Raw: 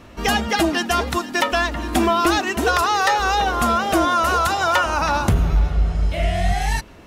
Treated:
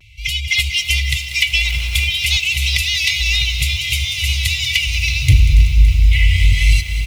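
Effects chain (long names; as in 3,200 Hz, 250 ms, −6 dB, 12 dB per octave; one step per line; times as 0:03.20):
brick-wall band-stop 150–2,000 Hz
high-pass filter 46 Hz 12 dB per octave
bass and treble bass −5 dB, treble −10 dB
comb filter 3 ms, depth 35%
dynamic equaliser 140 Hz, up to +4 dB, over −41 dBFS, Q 1.2
automatic gain control gain up to 8 dB
in parallel at −5 dB: soft clipping −16.5 dBFS, distortion −10 dB
0:01.64–0:02.04: on the sum: surface crackle 500 per second −28 dBFS
pitch vibrato 0.6 Hz 36 cents
on a send: feedback echo with a high-pass in the loop 189 ms, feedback 57%, high-pass 610 Hz, level −12 dB
on the sum: feedback echo at a low word length 282 ms, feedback 80%, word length 6 bits, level −13.5 dB
level +2.5 dB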